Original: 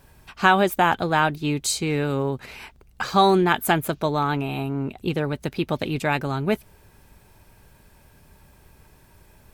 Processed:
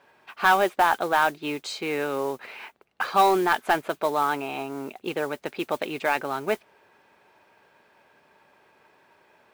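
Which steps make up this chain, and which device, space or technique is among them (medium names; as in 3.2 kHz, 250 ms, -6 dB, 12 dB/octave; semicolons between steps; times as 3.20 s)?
carbon microphone (band-pass 440–2900 Hz; saturation -11 dBFS, distortion -15 dB; modulation noise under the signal 21 dB); trim +1.5 dB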